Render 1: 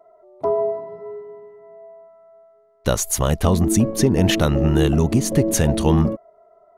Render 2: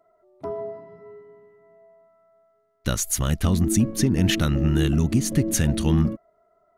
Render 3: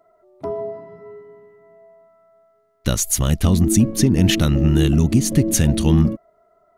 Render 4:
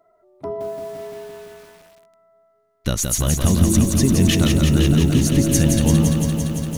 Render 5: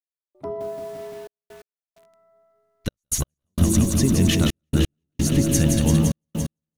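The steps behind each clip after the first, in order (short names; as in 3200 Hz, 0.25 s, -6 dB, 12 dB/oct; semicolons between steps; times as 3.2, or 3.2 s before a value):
band shelf 650 Hz -9 dB; gain -2.5 dB
dynamic EQ 1500 Hz, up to -5 dB, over -45 dBFS, Q 1.5; gain +5 dB
lo-fi delay 0.171 s, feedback 80%, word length 7-bit, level -4.5 dB; gain -2 dB
step gate "...xxxxxxxx..x" 130 bpm -60 dB; gain -2.5 dB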